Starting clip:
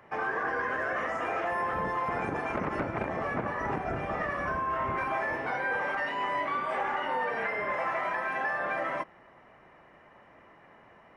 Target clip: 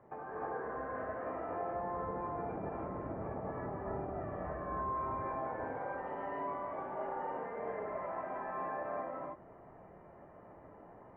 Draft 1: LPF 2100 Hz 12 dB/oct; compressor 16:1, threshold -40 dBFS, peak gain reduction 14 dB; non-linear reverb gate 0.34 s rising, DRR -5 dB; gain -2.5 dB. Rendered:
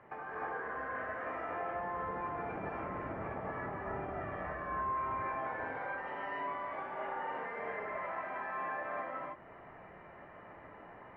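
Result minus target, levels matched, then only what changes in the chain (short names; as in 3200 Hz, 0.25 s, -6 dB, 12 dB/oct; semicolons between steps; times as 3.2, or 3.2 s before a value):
2000 Hz band +7.0 dB
change: LPF 800 Hz 12 dB/oct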